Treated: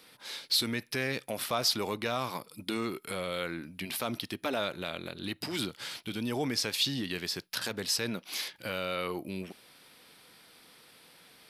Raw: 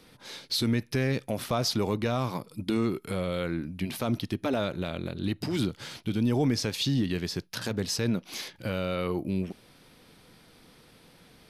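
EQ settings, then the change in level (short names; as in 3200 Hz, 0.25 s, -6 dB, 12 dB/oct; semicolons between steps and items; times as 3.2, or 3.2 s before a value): tilt +4 dB/oct; high shelf 3600 Hz -10 dB; bell 6300 Hz -4.5 dB 0.23 oct; 0.0 dB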